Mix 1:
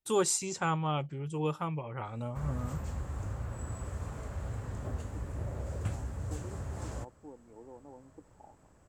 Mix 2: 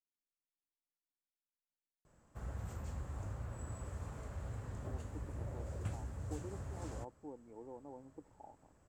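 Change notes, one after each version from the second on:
first voice: muted; background -6.0 dB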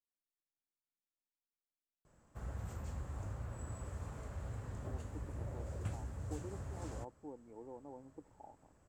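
no change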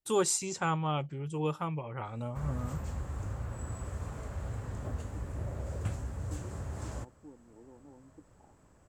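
first voice: unmuted; second voice: add high-order bell 1 kHz -8.5 dB 2.7 oct; background +6.0 dB

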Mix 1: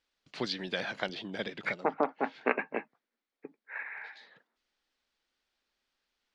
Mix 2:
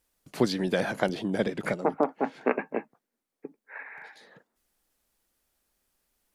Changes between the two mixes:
first voice: remove four-pole ladder low-pass 5.2 kHz, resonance 25%; master: add tilt shelf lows +6.5 dB, about 1.2 kHz

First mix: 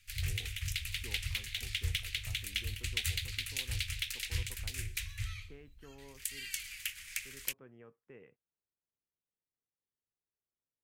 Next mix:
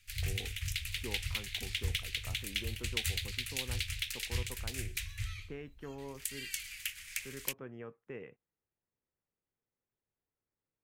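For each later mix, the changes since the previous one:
speech +9.5 dB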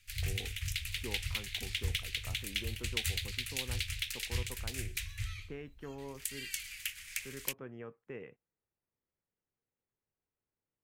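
no change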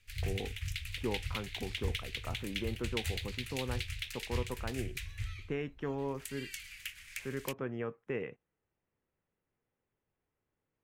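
speech +8.5 dB; background: add treble shelf 3.7 kHz -8.5 dB

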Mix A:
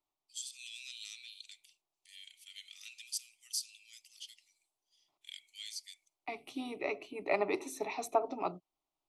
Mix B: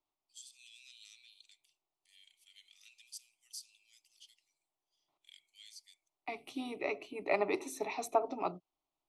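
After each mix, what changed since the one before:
first voice -10.0 dB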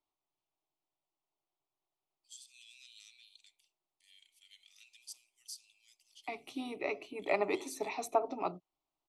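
first voice: entry +1.95 s

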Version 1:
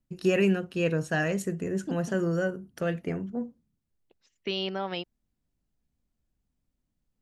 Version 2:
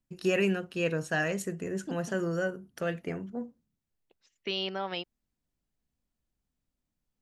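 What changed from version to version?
master: add bass shelf 410 Hz -6 dB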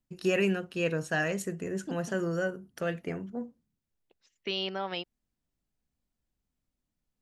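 no change

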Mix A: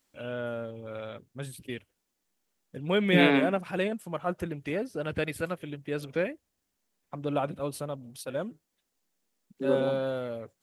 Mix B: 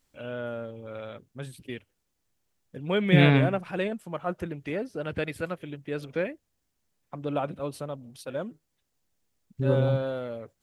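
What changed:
first voice: add treble shelf 8.1 kHz -9 dB; second voice: remove steep high-pass 170 Hz 96 dB/octave

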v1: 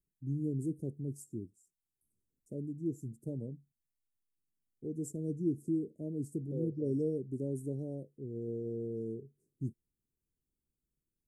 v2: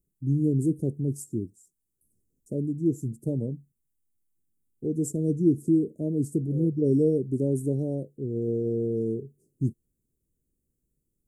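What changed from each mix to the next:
first voice +11.0 dB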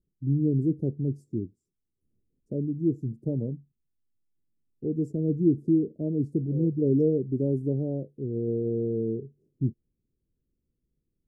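first voice: add distance through air 330 m

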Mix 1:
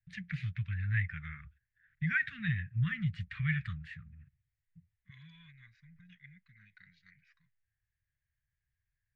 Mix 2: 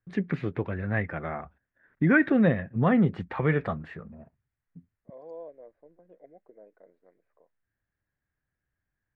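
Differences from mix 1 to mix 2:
second voice: add band-pass filter 520 Hz, Q 3.7; master: remove inverse Chebyshev band-stop 310–800 Hz, stop band 60 dB

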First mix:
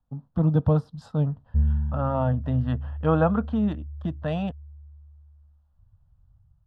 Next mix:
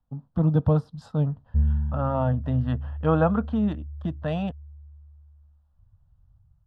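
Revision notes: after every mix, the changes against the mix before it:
no change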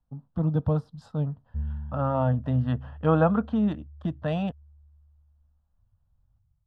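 first voice -4.0 dB; background -9.5 dB

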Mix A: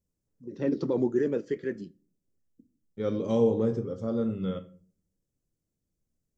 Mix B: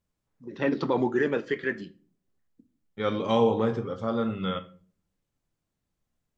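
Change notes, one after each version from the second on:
first voice: send +6.5 dB; master: add high-order bell 1.7 kHz +13 dB 2.8 oct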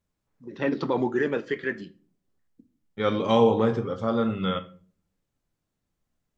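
second voice +3.0 dB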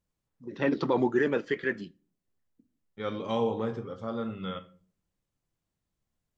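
first voice: send -9.0 dB; second voice -9.0 dB

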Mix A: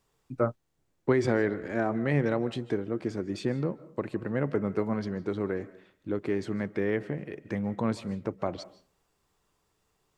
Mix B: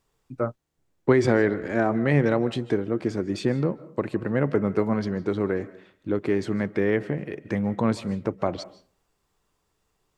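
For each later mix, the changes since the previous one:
second voice +5.5 dB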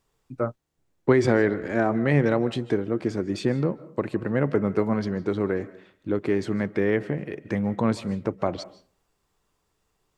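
no change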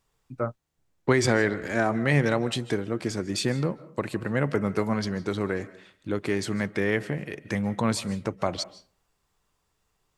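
second voice: remove low-pass 1.9 kHz 6 dB/octave; master: add peaking EQ 350 Hz -4.5 dB 1.5 oct

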